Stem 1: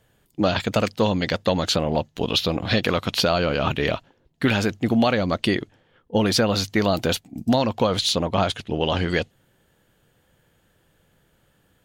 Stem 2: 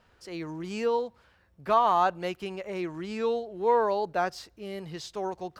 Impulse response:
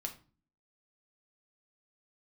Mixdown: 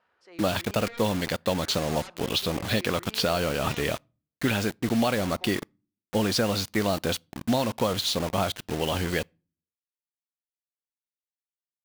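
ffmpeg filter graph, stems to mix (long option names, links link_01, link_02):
-filter_complex "[0:a]acrusher=bits=4:mix=0:aa=0.000001,volume=-5.5dB,asplit=2[link_01][link_02];[link_02]volume=-23dB[link_03];[1:a]bandpass=frequency=1200:width_type=q:width=0.65:csg=0,aeval=exprs='0.0501*sin(PI/2*1.78*val(0)/0.0501)':channel_layout=same,volume=-14.5dB,asplit=3[link_04][link_05][link_06];[link_04]atrim=end=3.82,asetpts=PTS-STARTPTS,afade=type=out:start_time=3.816:duration=0.004:curve=hsin[link_07];[link_05]atrim=start=3.82:end=5.03,asetpts=PTS-STARTPTS,volume=0[link_08];[link_06]atrim=start=5.03,asetpts=PTS-STARTPTS,afade=type=in:duration=0.004:curve=hsin[link_09];[link_07][link_08][link_09]concat=n=3:v=0:a=1,asplit=2[link_10][link_11];[link_11]volume=-14.5dB[link_12];[2:a]atrim=start_sample=2205[link_13];[link_03][link_12]amix=inputs=2:normalize=0[link_14];[link_14][link_13]afir=irnorm=-1:irlink=0[link_15];[link_01][link_10][link_15]amix=inputs=3:normalize=0"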